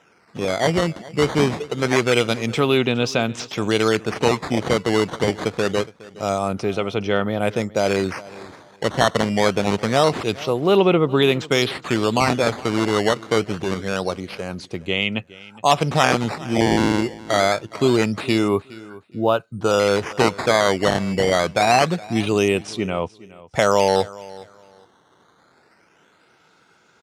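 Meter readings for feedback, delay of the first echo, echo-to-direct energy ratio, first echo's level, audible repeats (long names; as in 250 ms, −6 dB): 22%, 415 ms, −20.0 dB, −20.0 dB, 2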